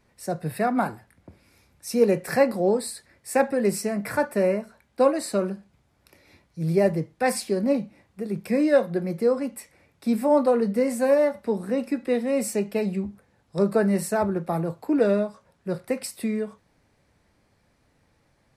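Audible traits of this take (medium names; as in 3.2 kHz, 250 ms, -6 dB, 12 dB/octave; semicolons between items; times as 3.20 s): noise floor -66 dBFS; spectral tilt -4.5 dB/octave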